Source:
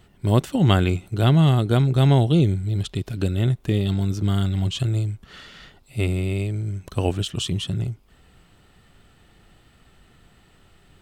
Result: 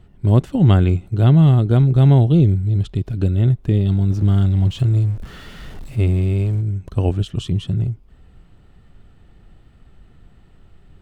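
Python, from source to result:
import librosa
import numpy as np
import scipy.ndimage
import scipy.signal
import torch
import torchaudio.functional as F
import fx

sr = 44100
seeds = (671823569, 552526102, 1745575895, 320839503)

y = fx.zero_step(x, sr, step_db=-35.0, at=(4.1, 6.61))
y = fx.tilt_eq(y, sr, slope=-2.5)
y = F.gain(torch.from_numpy(y), -2.0).numpy()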